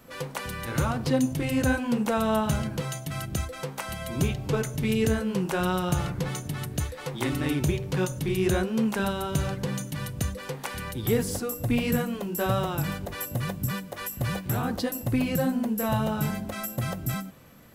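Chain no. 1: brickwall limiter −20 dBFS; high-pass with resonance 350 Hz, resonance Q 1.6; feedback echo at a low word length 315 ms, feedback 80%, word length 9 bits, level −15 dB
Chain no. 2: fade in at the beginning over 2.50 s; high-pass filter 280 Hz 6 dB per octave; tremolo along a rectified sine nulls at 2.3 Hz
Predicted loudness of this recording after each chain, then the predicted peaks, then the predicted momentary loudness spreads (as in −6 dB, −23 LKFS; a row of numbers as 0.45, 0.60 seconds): −31.0, −35.0 LKFS; −15.0, −15.0 dBFS; 7, 9 LU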